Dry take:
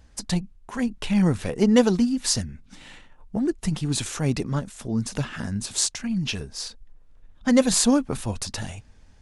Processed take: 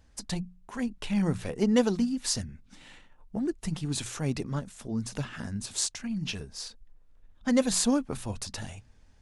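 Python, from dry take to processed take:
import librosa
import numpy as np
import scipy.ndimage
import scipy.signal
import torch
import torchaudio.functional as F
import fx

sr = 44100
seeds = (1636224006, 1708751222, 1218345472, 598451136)

y = fx.hum_notches(x, sr, base_hz=60, count=3)
y = y * 10.0 ** (-6.0 / 20.0)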